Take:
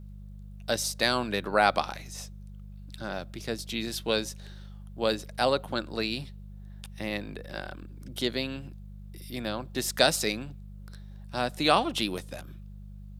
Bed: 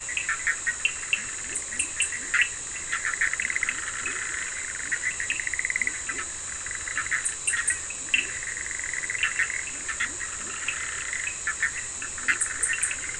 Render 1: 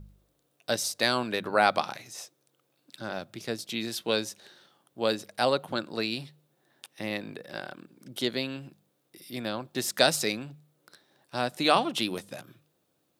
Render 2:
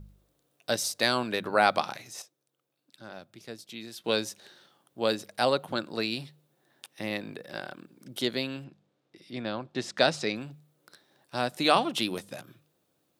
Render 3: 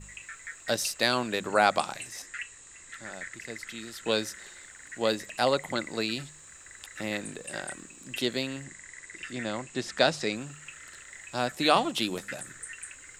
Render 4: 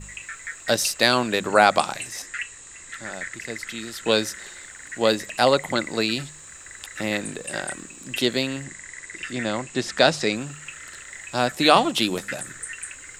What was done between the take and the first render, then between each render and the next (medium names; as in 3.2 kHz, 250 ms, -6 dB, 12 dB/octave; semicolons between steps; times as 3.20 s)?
de-hum 50 Hz, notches 4
2.22–4.04 s: gain -9 dB; 8.64–10.36 s: distance through air 120 m
add bed -16 dB
trim +7 dB; peak limiter -1 dBFS, peak gain reduction 2 dB